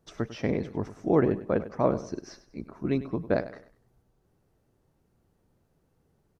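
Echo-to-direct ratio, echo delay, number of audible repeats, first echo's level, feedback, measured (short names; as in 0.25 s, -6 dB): -14.0 dB, 99 ms, 3, -14.5 dB, 33%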